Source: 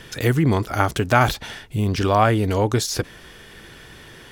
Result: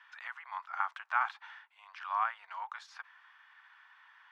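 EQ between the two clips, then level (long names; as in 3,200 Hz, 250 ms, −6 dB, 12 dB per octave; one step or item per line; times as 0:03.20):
Butterworth high-pass 920 Hz 48 dB per octave
low-pass filter 1,400 Hz 12 dB per octave
−7.5 dB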